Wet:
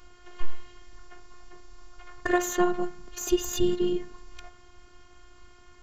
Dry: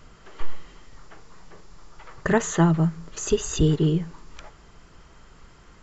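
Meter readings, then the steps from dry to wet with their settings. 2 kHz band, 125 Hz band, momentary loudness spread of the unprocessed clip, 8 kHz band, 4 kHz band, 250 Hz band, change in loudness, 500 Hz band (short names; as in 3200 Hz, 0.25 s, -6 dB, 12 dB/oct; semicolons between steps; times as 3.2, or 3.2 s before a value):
-2.0 dB, -20.0 dB, 12 LU, n/a, -2.0 dB, -4.5 dB, -4.5 dB, -2.0 dB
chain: tracing distortion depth 0.035 ms; de-hum 72.7 Hz, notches 28; robotiser 355 Hz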